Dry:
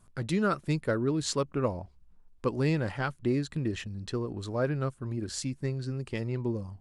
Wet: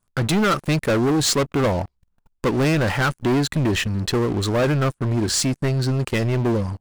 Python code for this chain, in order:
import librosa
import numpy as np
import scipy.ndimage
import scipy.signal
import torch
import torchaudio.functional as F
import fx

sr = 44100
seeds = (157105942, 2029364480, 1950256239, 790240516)

y = fx.low_shelf(x, sr, hz=390.0, db=-3.5)
y = fx.leveller(y, sr, passes=5)